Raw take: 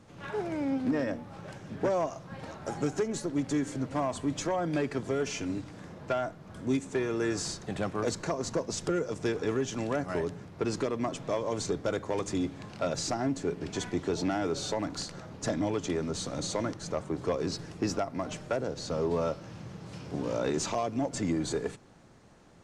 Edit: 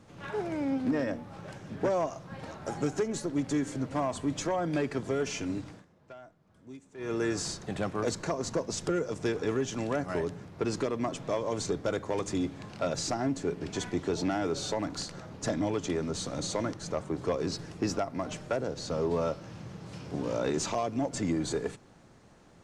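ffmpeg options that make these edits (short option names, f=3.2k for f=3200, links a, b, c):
-filter_complex "[0:a]asplit=3[a][b][c];[a]atrim=end=5.85,asetpts=PTS-STARTPTS,afade=t=out:st=5.7:d=0.15:silence=0.125893[d];[b]atrim=start=5.85:end=6.97,asetpts=PTS-STARTPTS,volume=-18dB[e];[c]atrim=start=6.97,asetpts=PTS-STARTPTS,afade=t=in:d=0.15:silence=0.125893[f];[d][e][f]concat=n=3:v=0:a=1"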